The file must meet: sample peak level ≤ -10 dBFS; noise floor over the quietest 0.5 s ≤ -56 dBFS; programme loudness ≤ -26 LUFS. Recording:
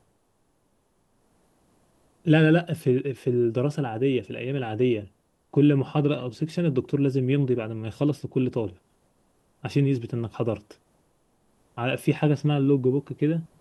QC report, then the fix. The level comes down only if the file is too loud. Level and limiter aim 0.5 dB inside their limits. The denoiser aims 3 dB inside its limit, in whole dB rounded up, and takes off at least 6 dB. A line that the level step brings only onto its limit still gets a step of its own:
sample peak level -6.0 dBFS: fail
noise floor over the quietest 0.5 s -68 dBFS: OK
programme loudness -25.0 LUFS: fail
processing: gain -1.5 dB; limiter -10.5 dBFS

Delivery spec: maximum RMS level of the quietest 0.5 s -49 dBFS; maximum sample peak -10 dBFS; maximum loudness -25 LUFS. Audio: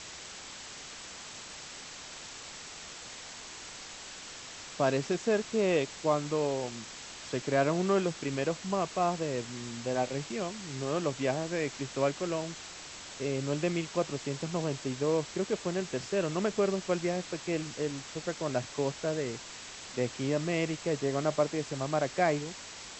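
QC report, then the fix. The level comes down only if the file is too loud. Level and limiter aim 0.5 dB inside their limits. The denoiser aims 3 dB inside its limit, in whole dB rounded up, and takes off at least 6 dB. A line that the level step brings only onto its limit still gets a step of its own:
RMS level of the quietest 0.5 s -45 dBFS: fail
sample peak -14.5 dBFS: OK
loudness -33.0 LUFS: OK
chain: denoiser 7 dB, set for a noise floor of -45 dBFS

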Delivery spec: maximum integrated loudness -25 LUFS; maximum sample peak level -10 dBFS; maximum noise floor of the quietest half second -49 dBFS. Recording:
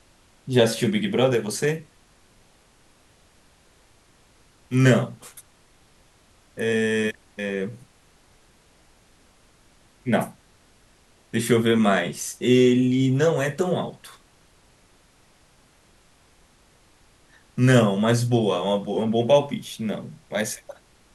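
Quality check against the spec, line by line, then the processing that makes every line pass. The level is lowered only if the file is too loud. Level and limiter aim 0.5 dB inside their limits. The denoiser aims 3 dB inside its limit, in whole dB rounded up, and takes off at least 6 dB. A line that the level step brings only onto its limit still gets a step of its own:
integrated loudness -22.5 LUFS: fail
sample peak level -5.0 dBFS: fail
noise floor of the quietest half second -57 dBFS: OK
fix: gain -3 dB; limiter -10.5 dBFS

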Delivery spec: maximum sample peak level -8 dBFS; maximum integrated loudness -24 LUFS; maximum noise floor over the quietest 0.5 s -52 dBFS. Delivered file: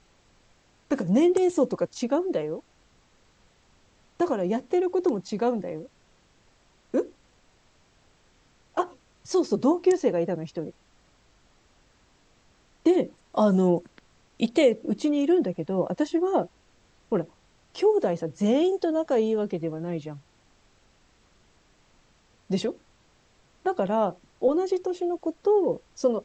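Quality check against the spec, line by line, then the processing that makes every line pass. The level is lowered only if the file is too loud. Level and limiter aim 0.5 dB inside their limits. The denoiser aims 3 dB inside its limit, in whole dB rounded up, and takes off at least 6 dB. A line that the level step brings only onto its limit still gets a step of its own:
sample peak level -10.0 dBFS: OK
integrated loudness -26.0 LUFS: OK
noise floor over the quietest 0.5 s -62 dBFS: OK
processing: none

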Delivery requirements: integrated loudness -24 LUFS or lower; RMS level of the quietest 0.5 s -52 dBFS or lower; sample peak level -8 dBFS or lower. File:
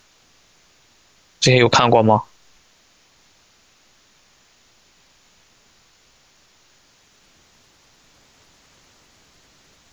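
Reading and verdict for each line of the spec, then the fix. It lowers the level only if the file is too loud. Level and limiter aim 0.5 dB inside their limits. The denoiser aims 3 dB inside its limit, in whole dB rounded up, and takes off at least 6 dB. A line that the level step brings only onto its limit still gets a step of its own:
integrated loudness -15.0 LUFS: fail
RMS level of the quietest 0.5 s -56 dBFS: OK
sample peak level -1.5 dBFS: fail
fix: gain -9.5 dB

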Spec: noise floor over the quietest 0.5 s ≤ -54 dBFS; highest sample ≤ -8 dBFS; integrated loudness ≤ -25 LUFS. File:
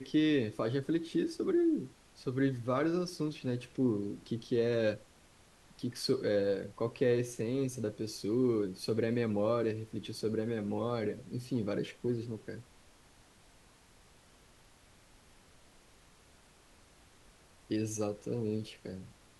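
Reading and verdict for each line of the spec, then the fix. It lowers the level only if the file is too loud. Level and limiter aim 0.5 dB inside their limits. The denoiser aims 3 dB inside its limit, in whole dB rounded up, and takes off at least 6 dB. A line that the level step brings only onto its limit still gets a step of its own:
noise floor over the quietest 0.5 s -62 dBFS: OK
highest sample -18.0 dBFS: OK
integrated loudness -34.0 LUFS: OK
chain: none

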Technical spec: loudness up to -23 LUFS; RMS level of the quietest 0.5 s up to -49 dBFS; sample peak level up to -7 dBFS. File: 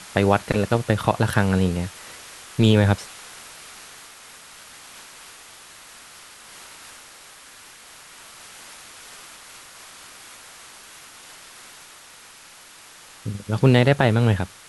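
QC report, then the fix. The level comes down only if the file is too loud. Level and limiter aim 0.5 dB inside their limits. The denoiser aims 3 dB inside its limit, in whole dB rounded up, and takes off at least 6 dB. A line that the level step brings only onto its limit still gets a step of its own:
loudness -20.5 LUFS: fail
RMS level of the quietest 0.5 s -46 dBFS: fail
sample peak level -2.5 dBFS: fail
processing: denoiser 6 dB, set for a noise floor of -46 dBFS; gain -3 dB; limiter -7.5 dBFS

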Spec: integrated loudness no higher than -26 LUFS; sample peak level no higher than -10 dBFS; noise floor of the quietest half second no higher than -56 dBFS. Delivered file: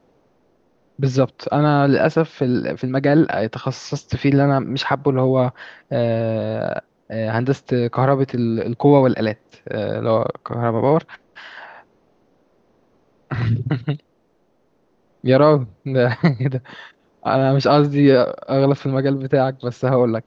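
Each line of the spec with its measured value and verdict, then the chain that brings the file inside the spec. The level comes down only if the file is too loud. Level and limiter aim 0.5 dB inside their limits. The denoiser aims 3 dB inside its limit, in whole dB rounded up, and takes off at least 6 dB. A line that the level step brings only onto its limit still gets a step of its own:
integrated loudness -19.0 LUFS: fail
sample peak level -1.5 dBFS: fail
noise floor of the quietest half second -62 dBFS: OK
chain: gain -7.5 dB; limiter -10.5 dBFS

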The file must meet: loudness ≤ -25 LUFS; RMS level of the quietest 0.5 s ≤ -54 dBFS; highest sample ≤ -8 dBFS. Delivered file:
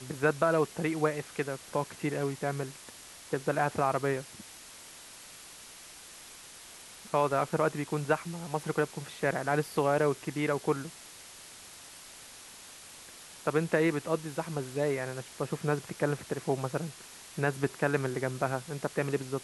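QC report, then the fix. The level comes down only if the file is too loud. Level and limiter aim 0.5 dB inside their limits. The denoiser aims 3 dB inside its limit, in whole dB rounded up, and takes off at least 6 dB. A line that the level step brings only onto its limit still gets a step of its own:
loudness -31.5 LUFS: OK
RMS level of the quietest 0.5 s -50 dBFS: fail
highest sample -12.5 dBFS: OK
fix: denoiser 7 dB, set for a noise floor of -50 dBFS

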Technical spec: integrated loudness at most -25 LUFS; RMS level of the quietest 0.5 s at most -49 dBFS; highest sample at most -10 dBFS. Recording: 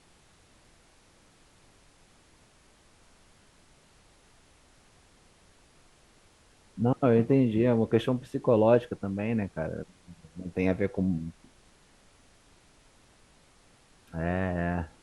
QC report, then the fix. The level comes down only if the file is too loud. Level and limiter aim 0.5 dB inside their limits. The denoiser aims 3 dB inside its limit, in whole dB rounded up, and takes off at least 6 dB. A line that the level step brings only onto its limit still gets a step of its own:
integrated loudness -27.5 LUFS: OK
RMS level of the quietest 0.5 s -60 dBFS: OK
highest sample -9.0 dBFS: fail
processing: limiter -10.5 dBFS

